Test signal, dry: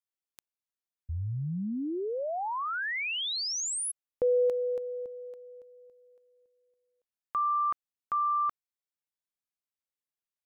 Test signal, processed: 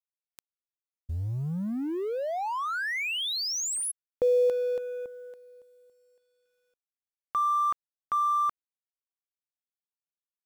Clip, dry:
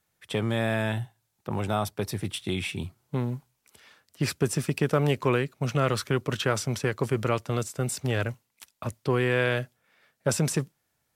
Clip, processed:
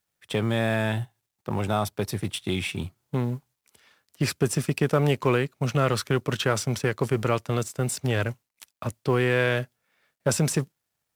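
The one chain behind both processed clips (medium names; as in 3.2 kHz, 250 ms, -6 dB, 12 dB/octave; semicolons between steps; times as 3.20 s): companding laws mixed up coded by A; in parallel at -5.5 dB: saturation -22.5 dBFS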